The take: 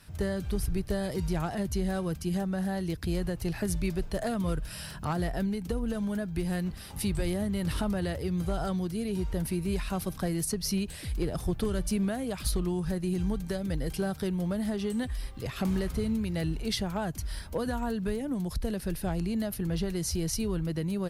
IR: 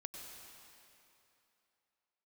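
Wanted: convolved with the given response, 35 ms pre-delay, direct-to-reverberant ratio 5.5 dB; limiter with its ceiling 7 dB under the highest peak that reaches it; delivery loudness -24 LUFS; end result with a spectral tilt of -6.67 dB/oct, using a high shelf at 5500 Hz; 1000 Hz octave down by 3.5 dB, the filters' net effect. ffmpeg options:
-filter_complex "[0:a]equalizer=f=1k:t=o:g=-5,highshelf=f=5.5k:g=-3.5,alimiter=level_in=2.5dB:limit=-24dB:level=0:latency=1,volume=-2.5dB,asplit=2[a][b];[1:a]atrim=start_sample=2205,adelay=35[c];[b][c]afir=irnorm=-1:irlink=0,volume=-2.5dB[d];[a][d]amix=inputs=2:normalize=0,volume=10dB"

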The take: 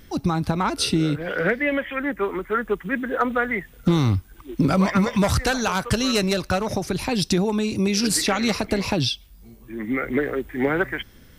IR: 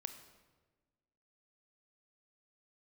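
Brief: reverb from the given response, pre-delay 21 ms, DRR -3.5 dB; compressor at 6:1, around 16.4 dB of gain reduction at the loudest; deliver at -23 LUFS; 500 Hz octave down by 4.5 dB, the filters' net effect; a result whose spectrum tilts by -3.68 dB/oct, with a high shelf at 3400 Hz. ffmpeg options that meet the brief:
-filter_complex "[0:a]equalizer=f=500:t=o:g=-6,highshelf=f=3.4k:g=8.5,acompressor=threshold=-32dB:ratio=6,asplit=2[a][b];[1:a]atrim=start_sample=2205,adelay=21[c];[b][c]afir=irnorm=-1:irlink=0,volume=6.5dB[d];[a][d]amix=inputs=2:normalize=0,volume=6.5dB"

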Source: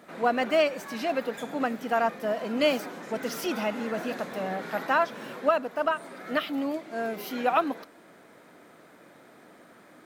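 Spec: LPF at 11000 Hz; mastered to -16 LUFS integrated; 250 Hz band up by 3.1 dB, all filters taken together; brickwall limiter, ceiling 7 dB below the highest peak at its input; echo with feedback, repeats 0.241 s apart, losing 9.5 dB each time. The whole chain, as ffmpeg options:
-af "lowpass=11k,equalizer=f=250:t=o:g=3.5,alimiter=limit=-18.5dB:level=0:latency=1,aecho=1:1:241|482|723|964:0.335|0.111|0.0365|0.012,volume=13.5dB"

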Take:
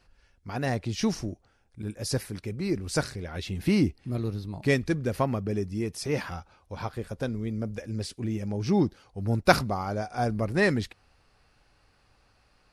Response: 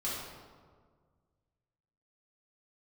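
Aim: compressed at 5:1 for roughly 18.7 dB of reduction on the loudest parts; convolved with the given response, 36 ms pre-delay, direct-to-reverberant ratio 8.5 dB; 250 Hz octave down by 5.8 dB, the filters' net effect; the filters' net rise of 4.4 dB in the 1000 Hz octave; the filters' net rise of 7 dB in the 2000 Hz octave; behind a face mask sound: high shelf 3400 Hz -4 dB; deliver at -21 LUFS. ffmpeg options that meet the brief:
-filter_complex "[0:a]equalizer=f=250:t=o:g=-8.5,equalizer=f=1k:t=o:g=5.5,equalizer=f=2k:t=o:g=8,acompressor=threshold=-31dB:ratio=5,asplit=2[a][b];[1:a]atrim=start_sample=2205,adelay=36[c];[b][c]afir=irnorm=-1:irlink=0,volume=-13dB[d];[a][d]amix=inputs=2:normalize=0,highshelf=f=3.4k:g=-4,volume=15dB"

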